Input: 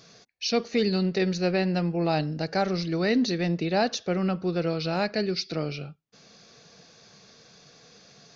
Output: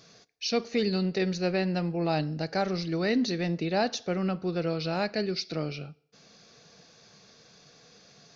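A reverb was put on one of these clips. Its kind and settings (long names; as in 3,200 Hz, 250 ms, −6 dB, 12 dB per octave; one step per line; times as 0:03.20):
feedback delay network reverb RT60 0.67 s, low-frequency decay 0.8×, high-frequency decay 0.9×, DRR 19.5 dB
level −2.5 dB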